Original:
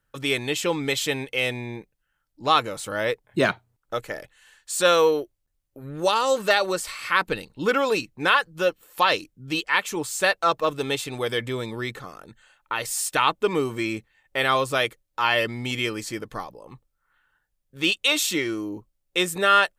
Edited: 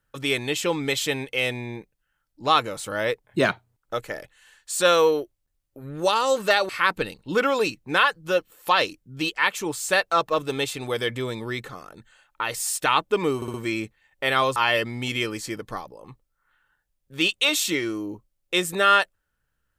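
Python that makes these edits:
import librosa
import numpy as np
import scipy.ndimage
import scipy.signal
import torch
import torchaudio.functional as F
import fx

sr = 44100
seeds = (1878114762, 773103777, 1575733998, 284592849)

y = fx.edit(x, sr, fx.cut(start_s=6.69, length_s=0.31),
    fx.stutter(start_s=13.67, slice_s=0.06, count=4),
    fx.cut(start_s=14.69, length_s=0.5), tone=tone)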